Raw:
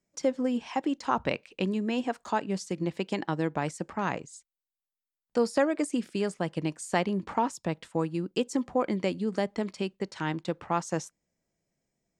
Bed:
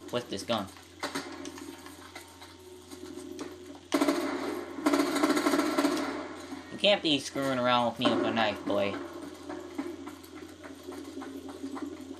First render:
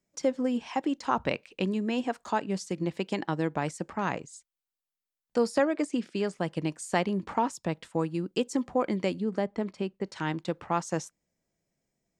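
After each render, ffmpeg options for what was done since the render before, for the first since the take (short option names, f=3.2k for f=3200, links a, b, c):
-filter_complex "[0:a]asettb=1/sr,asplit=3[a][b][c];[a]atrim=end=5.594[d];[b]atrim=start=5.59:end=6.34,asetpts=PTS-STARTPTS,afade=t=in:d=0.004:c=qsin,afade=t=out:st=0.746:d=0.004:c=qsin,highpass=140,lowpass=6.5k[e];[c]atrim=start=6.336[f];[d][e]acrossfade=d=0.004:c1=hsin:c2=qsin[g];[g][f]acrossfade=d=0.004:c1=qsin:c2=hsin,asettb=1/sr,asplit=3[h][i][j];[h]atrim=end=9.204[k];[i]atrim=start=9.2:end=10.06,asetpts=PTS-STARTPTS,afade=t=in:d=0.004:c=qsin,afade=t=out:st=0.856:d=0.004:c=qsin,highshelf=f=2.7k:g=-10.5[l];[j]atrim=start=10.056[m];[k][l]acrossfade=d=0.004:c1=hsin:c2=qsin[n];[n][m]acrossfade=d=0.004:c1=qsin:c2=hsin"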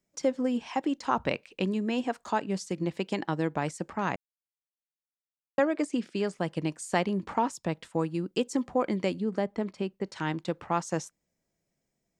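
-filter_complex "[0:a]asplit=3[a][b][c];[a]atrim=end=4.16,asetpts=PTS-STARTPTS,afade=t=out:st=4.156:d=0.004:c=hsin[d];[b]atrim=start=4.16:end=5.58,asetpts=PTS-STARTPTS,volume=0[e];[c]atrim=start=5.58,asetpts=PTS-STARTPTS,afade=t=in:d=0.004:c=hsin[f];[d][e][f]concat=n=3:v=0:a=1"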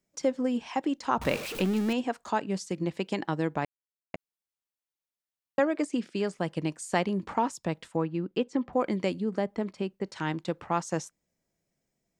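-filter_complex "[0:a]asettb=1/sr,asplit=3[a][b][c];[a]atrim=end=1.214[d];[b]atrim=start=1.21:end=1.93,asetpts=PTS-STARTPTS,afade=t=in:d=0.004:c=qsin,afade=t=out:st=0.716:d=0.004:c=qsin,aeval=exprs='val(0)+0.5*0.0266*sgn(val(0))':c=same[e];[c]atrim=start=1.926[f];[d][e]acrossfade=d=0.004:c1=hsin:c2=qsin[g];[g][f]acrossfade=d=0.004:c1=qsin:c2=hsin,asettb=1/sr,asplit=3[h][i][j];[h]atrim=end=7.964[k];[i]atrim=start=7.96:end=8.73,asetpts=PTS-STARTPTS,afade=t=in:d=0.004:c=qsin,afade=t=out:st=0.766:d=0.004:c=qsin,lowpass=3k[l];[j]atrim=start=8.726[m];[k][l]acrossfade=d=0.004:c1=hsin:c2=qsin[n];[n][m]acrossfade=d=0.004:c1=qsin:c2=hsin,asplit=3[o][p][q];[o]atrim=end=3.65,asetpts=PTS-STARTPTS,afade=t=out:st=3.646:d=0.004:c=hsin[r];[p]atrim=start=3.65:end=4.14,asetpts=PTS-STARTPTS,volume=0[s];[q]atrim=start=4.14,asetpts=PTS-STARTPTS,afade=t=in:d=0.004:c=hsin[t];[r][s][t]concat=n=3:v=0:a=1"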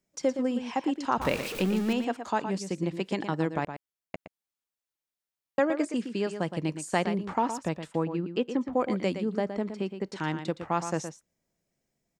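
-filter_complex "[0:a]asplit=2[a][b];[b]adelay=116.6,volume=-9dB,highshelf=f=4k:g=-2.62[c];[a][c]amix=inputs=2:normalize=0"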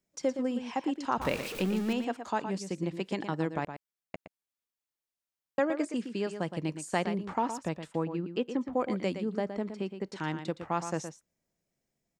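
-af "volume=-3dB"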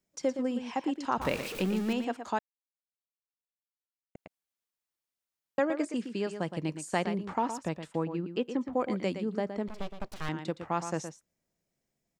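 -filter_complex "[0:a]asettb=1/sr,asplit=3[a][b][c];[a]atrim=end=9.684[d];[b]atrim=start=9.68:end=10.29,asetpts=PTS-STARTPTS,afade=t=in:d=0.004:c=qsin,afade=t=out:st=0.606:d=0.004:c=qsin,aeval=exprs='abs(val(0))':c=same[e];[c]atrim=start=10.286[f];[d][e]acrossfade=d=0.004:c1=hsin:c2=qsin[g];[g][f]acrossfade=d=0.004:c1=qsin:c2=hsin,asplit=3[h][i][j];[h]atrim=end=2.39,asetpts=PTS-STARTPTS,afade=t=out:st=2.386:d=0.004:c=hsin[k];[i]atrim=start=2.39:end=4.15,asetpts=PTS-STARTPTS,volume=0[l];[j]atrim=start=4.15,asetpts=PTS-STARTPTS,afade=t=in:d=0.004:c=hsin[m];[k][l][m]concat=n=3:v=0:a=1"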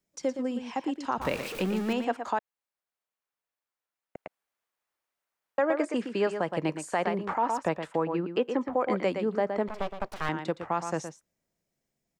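-filter_complex "[0:a]acrossover=split=430|2200[a][b][c];[b]dynaudnorm=f=210:g=21:m=11.5dB[d];[a][d][c]amix=inputs=3:normalize=0,alimiter=limit=-16.5dB:level=0:latency=1:release=132"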